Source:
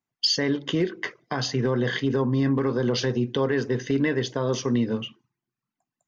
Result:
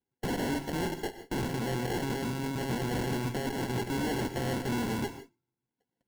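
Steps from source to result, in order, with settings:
loose part that buzzes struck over −37 dBFS, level −21 dBFS
low-shelf EQ 76 Hz +8.5 dB
notch comb filter 610 Hz
hollow resonant body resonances 1,600/2,700 Hz, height 17 dB, ringing for 40 ms
decimation without filtering 36×
0:01.51–0:03.81: compressor whose output falls as the input rises −25 dBFS, ratio −0.5
tube saturation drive 30 dB, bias 0.75
reverb whose tail is shaped and stops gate 180 ms rising, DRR 10 dB
level +1 dB

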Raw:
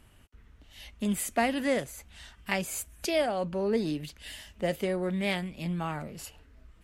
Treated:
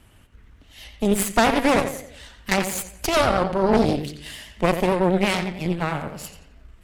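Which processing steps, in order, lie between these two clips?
feedback echo with a low-pass in the loop 88 ms, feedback 47%, low-pass 5,000 Hz, level −7 dB
harmonic generator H 6 −9 dB, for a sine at −11.5 dBFS
pitch vibrato 9 Hz 69 cents
level +5 dB

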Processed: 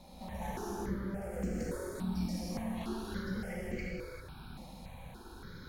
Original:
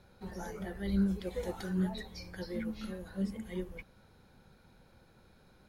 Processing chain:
brickwall limiter −30.5 dBFS, peak gain reduction 10 dB
0:00.53–0:02.69: octave-band graphic EQ 250/1,000/4,000/8,000 Hz +11/−12/−10/+6 dB
gain into a clipping stage and back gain 33 dB
downward compressor, threshold −46 dBFS, peak gain reduction 11 dB
tube saturation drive 48 dB, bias 0.65
reverb whose tail is shaped and stops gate 420 ms flat, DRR −6.5 dB
step-sequenced phaser 3.5 Hz 410–3,600 Hz
level +11.5 dB

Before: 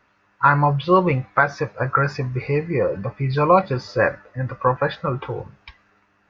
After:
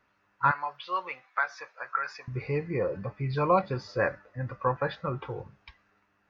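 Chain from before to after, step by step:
0:00.51–0:02.28: high-pass filter 1,100 Hz 12 dB per octave
level −8.5 dB

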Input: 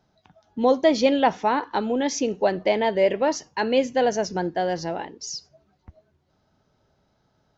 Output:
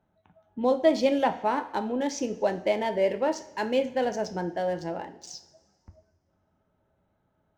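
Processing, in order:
adaptive Wiener filter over 9 samples
coupled-rooms reverb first 0.41 s, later 1.7 s, from −16 dB, DRR 7 dB
level −5.5 dB

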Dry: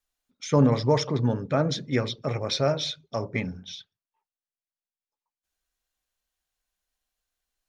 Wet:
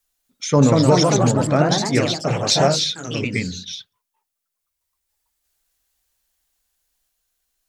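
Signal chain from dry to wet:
high-shelf EQ 5,900 Hz +10 dB
delay with pitch and tempo change per echo 246 ms, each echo +2 semitones, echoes 3
0:02.76–0:03.75: flat-topped bell 810 Hz −14 dB 1.2 octaves
level +5 dB

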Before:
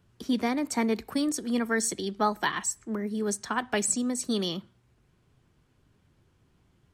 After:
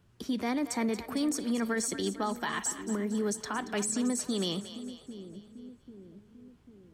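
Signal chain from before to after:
brickwall limiter −23 dBFS, peak gain reduction 9.5 dB
on a send: echo with a time of its own for lows and highs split 460 Hz, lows 794 ms, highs 229 ms, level −12 dB

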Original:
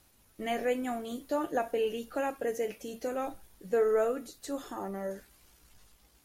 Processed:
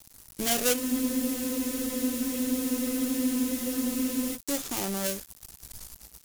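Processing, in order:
gap after every zero crossing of 0.28 ms
high-shelf EQ 3,300 Hz +7 dB
in parallel at +1 dB: downward compressor, threshold −42 dBFS, peak gain reduction 18.5 dB
on the sum: bass and treble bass +6 dB, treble +12 dB
frozen spectrum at 0:00.81, 3.54 s

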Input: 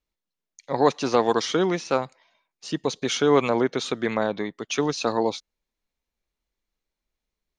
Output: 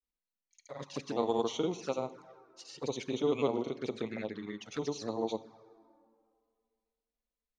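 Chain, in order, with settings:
granular cloud 100 ms, grains 20 per second, pitch spread up and down by 0 semitones
dense smooth reverb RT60 2.2 s, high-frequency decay 0.5×, DRR 14 dB
flanger swept by the level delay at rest 4 ms, full sweep at −22.5 dBFS
level −8 dB

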